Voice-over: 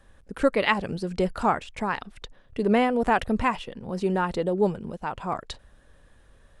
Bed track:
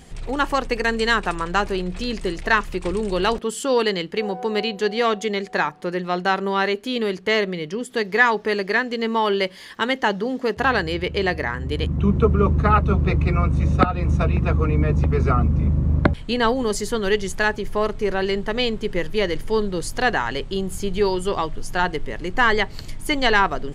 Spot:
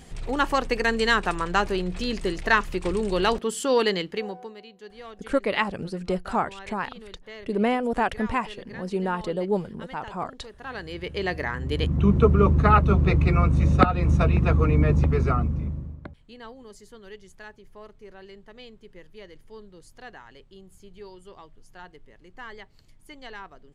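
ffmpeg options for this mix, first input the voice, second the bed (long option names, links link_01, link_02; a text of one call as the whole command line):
ffmpeg -i stem1.wav -i stem2.wav -filter_complex "[0:a]adelay=4900,volume=-2dB[link_01];[1:a]volume=20dB,afade=type=out:start_time=3.95:duration=0.6:silence=0.0944061,afade=type=in:start_time=10.6:duration=1.37:silence=0.0794328,afade=type=out:start_time=14.92:duration=1.05:silence=0.0707946[link_02];[link_01][link_02]amix=inputs=2:normalize=0" out.wav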